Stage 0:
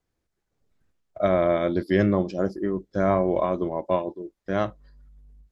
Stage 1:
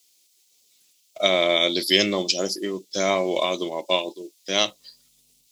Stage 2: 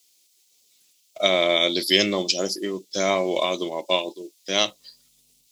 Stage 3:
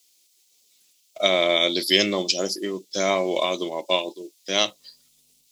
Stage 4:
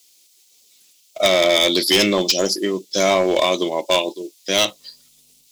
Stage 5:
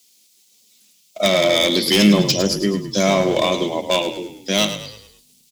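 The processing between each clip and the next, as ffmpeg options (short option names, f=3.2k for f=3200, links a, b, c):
-af "aexciter=amount=13.1:drive=8:freq=2.5k,highpass=270"
-af anull
-af "lowshelf=f=61:g=-10"
-af "asoftclip=type=hard:threshold=-17dB,volume=7dB"
-filter_complex "[0:a]equalizer=f=210:t=o:w=0.38:g=14,asplit=2[a][b];[b]asplit=5[c][d][e][f][g];[c]adelay=106,afreqshift=-33,volume=-10dB[h];[d]adelay=212,afreqshift=-66,volume=-17.1dB[i];[e]adelay=318,afreqshift=-99,volume=-24.3dB[j];[f]adelay=424,afreqshift=-132,volume=-31.4dB[k];[g]adelay=530,afreqshift=-165,volume=-38.5dB[l];[h][i][j][k][l]amix=inputs=5:normalize=0[m];[a][m]amix=inputs=2:normalize=0,volume=-1.5dB"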